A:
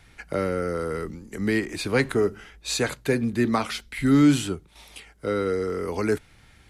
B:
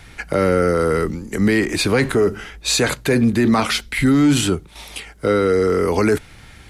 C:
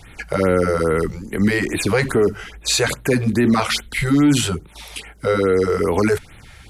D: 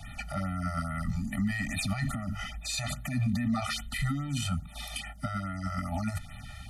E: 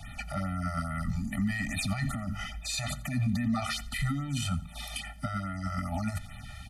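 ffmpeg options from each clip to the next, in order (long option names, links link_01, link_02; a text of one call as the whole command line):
ffmpeg -i in.wav -af "acontrast=64,alimiter=limit=-13dB:level=0:latency=1:release=16,volume=5dB" out.wav
ffmpeg -i in.wav -af "afftfilt=real='re*(1-between(b*sr/1024,220*pow(6200/220,0.5+0.5*sin(2*PI*2.4*pts/sr))/1.41,220*pow(6200/220,0.5+0.5*sin(2*PI*2.4*pts/sr))*1.41))':imag='im*(1-between(b*sr/1024,220*pow(6200/220,0.5+0.5*sin(2*PI*2.4*pts/sr))/1.41,220*pow(6200/220,0.5+0.5*sin(2*PI*2.4*pts/sr))*1.41))':win_size=1024:overlap=0.75" out.wav
ffmpeg -i in.wav -filter_complex "[0:a]acrossover=split=140[link_01][link_02];[link_02]acompressor=threshold=-22dB:ratio=2[link_03];[link_01][link_03]amix=inputs=2:normalize=0,alimiter=limit=-21dB:level=0:latency=1:release=38,afftfilt=real='re*eq(mod(floor(b*sr/1024/290),2),0)':imag='im*eq(mod(floor(b*sr/1024/290),2),0)':win_size=1024:overlap=0.75" out.wav
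ffmpeg -i in.wav -af "aecho=1:1:87|174|261:0.0891|0.0312|0.0109" out.wav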